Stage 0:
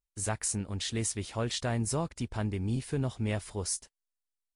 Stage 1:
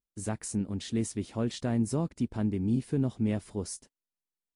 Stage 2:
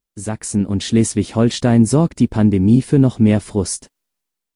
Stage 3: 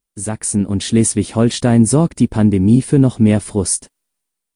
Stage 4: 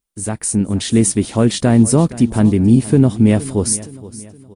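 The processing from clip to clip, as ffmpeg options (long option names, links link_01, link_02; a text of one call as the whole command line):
ffmpeg -i in.wav -af "equalizer=frequency=240:width_type=o:width=2:gain=14,volume=-7dB" out.wav
ffmpeg -i in.wav -af "dynaudnorm=framelen=160:gausssize=7:maxgain=7.5dB,volume=8.5dB" out.wav
ffmpeg -i in.wav -af "equalizer=frequency=9200:width=4.6:gain=10.5,volume=1dB" out.wav
ffmpeg -i in.wav -af "aecho=1:1:468|936|1404|1872:0.133|0.0573|0.0247|0.0106" out.wav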